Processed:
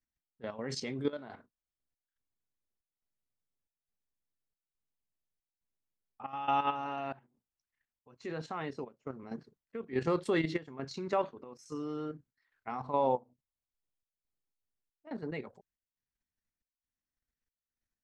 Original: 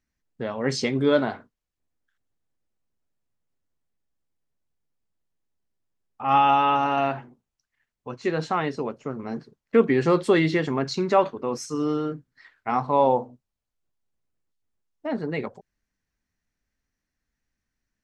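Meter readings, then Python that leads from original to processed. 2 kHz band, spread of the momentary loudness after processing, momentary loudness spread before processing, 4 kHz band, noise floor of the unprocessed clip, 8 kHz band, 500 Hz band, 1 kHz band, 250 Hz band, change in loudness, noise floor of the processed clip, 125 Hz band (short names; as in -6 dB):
-12.5 dB, 16 LU, 16 LU, -12.0 dB, -84 dBFS, -12.0 dB, -12.5 dB, -12.5 dB, -12.5 dB, -12.5 dB, under -85 dBFS, -12.0 dB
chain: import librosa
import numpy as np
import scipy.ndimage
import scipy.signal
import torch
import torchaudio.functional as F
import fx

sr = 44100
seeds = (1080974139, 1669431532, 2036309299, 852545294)

y = fx.step_gate(x, sr, bpm=139, pattern='xx..xxxx', floor_db=-12.0, edge_ms=4.5)
y = fx.level_steps(y, sr, step_db=10)
y = y * librosa.db_to_amplitude(-7.5)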